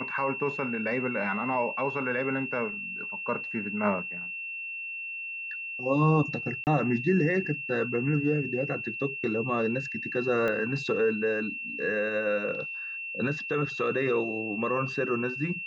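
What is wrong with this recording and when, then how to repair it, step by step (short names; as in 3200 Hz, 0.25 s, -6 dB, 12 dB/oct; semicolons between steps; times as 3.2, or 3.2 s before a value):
tone 2700 Hz -34 dBFS
6.64–6.67 gap 29 ms
10.48 pop -19 dBFS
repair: de-click; notch 2700 Hz, Q 30; interpolate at 6.64, 29 ms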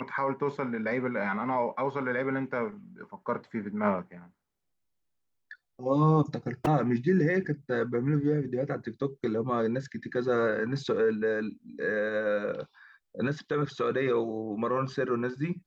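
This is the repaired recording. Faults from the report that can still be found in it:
10.48 pop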